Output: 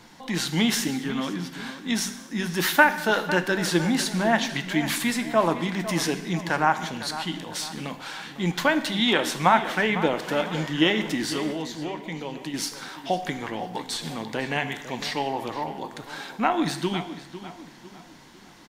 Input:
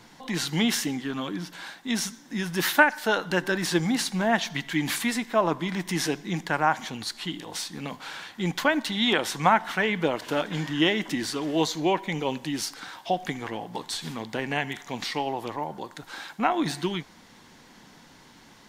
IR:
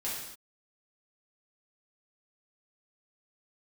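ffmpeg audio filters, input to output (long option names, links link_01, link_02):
-filter_complex "[0:a]asettb=1/sr,asplit=3[link_01][link_02][link_03];[link_01]atrim=end=11.524[link_04];[link_02]atrim=start=11.52:end=12.54,asetpts=PTS-STARTPTS,afade=type=in:duration=0.004:curve=qsin,afade=type=out:start_time=1.016:duration=0.004:curve=qsin,acompressor=threshold=-32dB:ratio=5[link_05];[link_03]atrim=start=12.536[link_06];[link_04][link_05]acrossfade=duration=0.004:curve1=hsin:curve2=qsin[link_07];[link_07][link_06]acrossfade=duration=0.004:curve1=qsin:curve2=hsin,asplit=2[link_08][link_09];[link_09]adelay=502,lowpass=frequency=3500:poles=1,volume=-12.5dB,asplit=2[link_10][link_11];[link_11]adelay=502,lowpass=frequency=3500:poles=1,volume=0.42,asplit=2[link_12][link_13];[link_13]adelay=502,lowpass=frequency=3500:poles=1,volume=0.42,asplit=2[link_14][link_15];[link_15]adelay=502,lowpass=frequency=3500:poles=1,volume=0.42[link_16];[link_08][link_10][link_12][link_14][link_16]amix=inputs=5:normalize=0,asplit=2[link_17][link_18];[1:a]atrim=start_sample=2205[link_19];[link_18][link_19]afir=irnorm=-1:irlink=0,volume=-12dB[link_20];[link_17][link_20]amix=inputs=2:normalize=0"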